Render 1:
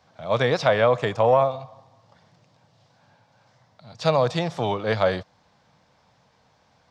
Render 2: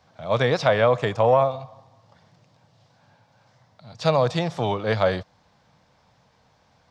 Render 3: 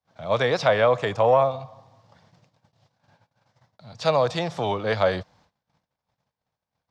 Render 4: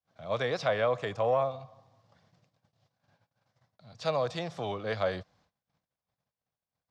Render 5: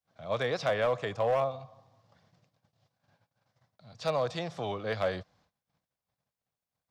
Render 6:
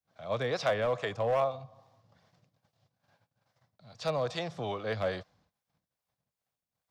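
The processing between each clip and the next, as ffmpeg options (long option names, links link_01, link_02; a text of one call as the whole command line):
ffmpeg -i in.wav -af "lowshelf=frequency=91:gain=5.5" out.wav
ffmpeg -i in.wav -filter_complex "[0:a]agate=range=-28dB:threshold=-57dB:ratio=16:detection=peak,acrossover=split=320[link_01][link_02];[link_01]alimiter=level_in=3.5dB:limit=-24dB:level=0:latency=1,volume=-3.5dB[link_03];[link_03][link_02]amix=inputs=2:normalize=0" out.wav
ffmpeg -i in.wav -af "bandreject=frequency=900:width=9.6,volume=-8.5dB" out.wav
ffmpeg -i in.wav -af "volume=21.5dB,asoftclip=hard,volume=-21.5dB" out.wav
ffmpeg -i in.wav -filter_complex "[0:a]acrossover=split=410[link_01][link_02];[link_01]aeval=exprs='val(0)*(1-0.5/2+0.5/2*cos(2*PI*2.4*n/s))':channel_layout=same[link_03];[link_02]aeval=exprs='val(0)*(1-0.5/2-0.5/2*cos(2*PI*2.4*n/s))':channel_layout=same[link_04];[link_03][link_04]amix=inputs=2:normalize=0,volume=2dB" out.wav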